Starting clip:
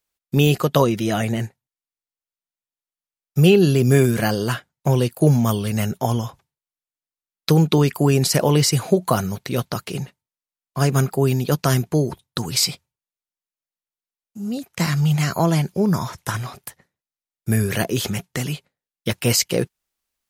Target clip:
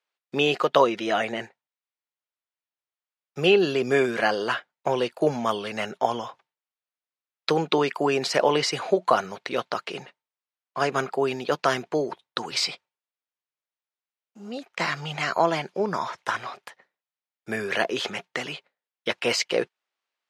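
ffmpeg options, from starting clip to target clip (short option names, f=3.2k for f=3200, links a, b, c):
-af "highpass=500,lowpass=3.4k,volume=2dB"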